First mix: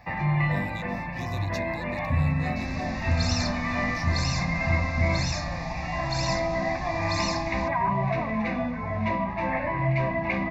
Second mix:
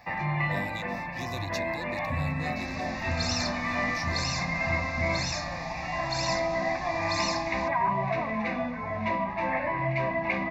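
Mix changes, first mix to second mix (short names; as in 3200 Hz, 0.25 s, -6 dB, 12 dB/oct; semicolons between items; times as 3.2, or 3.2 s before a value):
speech +3.0 dB; master: add low shelf 190 Hz -10 dB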